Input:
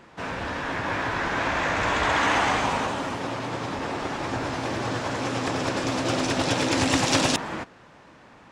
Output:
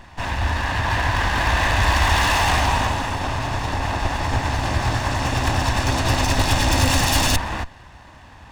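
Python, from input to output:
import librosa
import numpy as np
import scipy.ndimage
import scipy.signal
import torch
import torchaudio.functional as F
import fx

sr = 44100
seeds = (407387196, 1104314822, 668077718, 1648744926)

y = fx.lower_of_two(x, sr, delay_ms=1.1)
y = 10.0 ** (-20.0 / 20.0) * (np.abs((y / 10.0 ** (-20.0 / 20.0) + 3.0) % 4.0 - 2.0) - 1.0)
y = fx.low_shelf_res(y, sr, hz=110.0, db=10.5, q=1.5)
y = F.gain(torch.from_numpy(y), 6.5).numpy()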